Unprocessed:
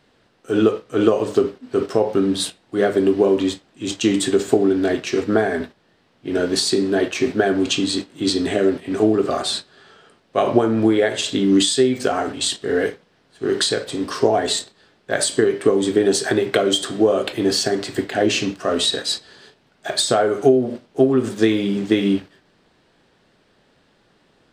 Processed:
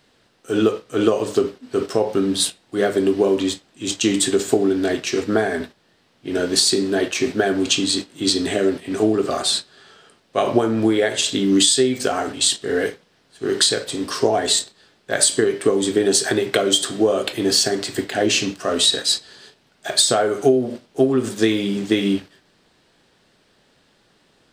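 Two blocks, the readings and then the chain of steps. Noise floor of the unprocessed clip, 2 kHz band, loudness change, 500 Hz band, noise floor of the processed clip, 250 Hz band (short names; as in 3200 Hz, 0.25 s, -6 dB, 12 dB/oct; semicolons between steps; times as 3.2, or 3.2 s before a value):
-60 dBFS, +0.5 dB, 0.0 dB, -1.5 dB, -60 dBFS, -1.5 dB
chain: high shelf 3500 Hz +8.5 dB; gain -1.5 dB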